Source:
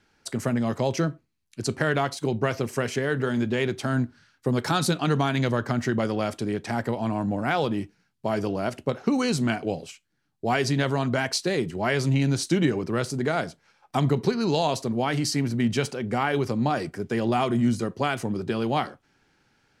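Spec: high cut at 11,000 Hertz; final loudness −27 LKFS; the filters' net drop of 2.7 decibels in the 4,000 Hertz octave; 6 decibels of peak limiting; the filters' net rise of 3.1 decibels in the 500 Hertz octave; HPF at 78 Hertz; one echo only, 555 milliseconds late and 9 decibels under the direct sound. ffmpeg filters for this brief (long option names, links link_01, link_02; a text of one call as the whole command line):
ffmpeg -i in.wav -af "highpass=78,lowpass=11000,equalizer=frequency=500:width_type=o:gain=4,equalizer=frequency=4000:width_type=o:gain=-3.5,alimiter=limit=-14dB:level=0:latency=1,aecho=1:1:555:0.355,volume=-1.5dB" out.wav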